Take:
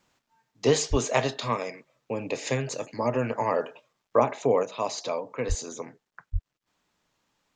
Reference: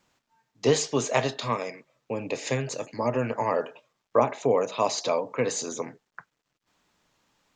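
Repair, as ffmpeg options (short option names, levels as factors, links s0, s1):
-filter_complex "[0:a]asplit=3[s0][s1][s2];[s0]afade=t=out:st=0.9:d=0.02[s3];[s1]highpass=f=140:w=0.5412,highpass=f=140:w=1.3066,afade=t=in:st=0.9:d=0.02,afade=t=out:st=1.02:d=0.02[s4];[s2]afade=t=in:st=1.02:d=0.02[s5];[s3][s4][s5]amix=inputs=3:normalize=0,asplit=3[s6][s7][s8];[s6]afade=t=out:st=5.48:d=0.02[s9];[s7]highpass=f=140:w=0.5412,highpass=f=140:w=1.3066,afade=t=in:st=5.48:d=0.02,afade=t=out:st=5.6:d=0.02[s10];[s8]afade=t=in:st=5.6:d=0.02[s11];[s9][s10][s11]amix=inputs=3:normalize=0,asplit=3[s12][s13][s14];[s12]afade=t=out:st=6.32:d=0.02[s15];[s13]highpass=f=140:w=0.5412,highpass=f=140:w=1.3066,afade=t=in:st=6.32:d=0.02,afade=t=out:st=6.44:d=0.02[s16];[s14]afade=t=in:st=6.44:d=0.02[s17];[s15][s16][s17]amix=inputs=3:normalize=0,asetnsamples=n=441:p=0,asendcmd='4.63 volume volume 4.5dB',volume=1"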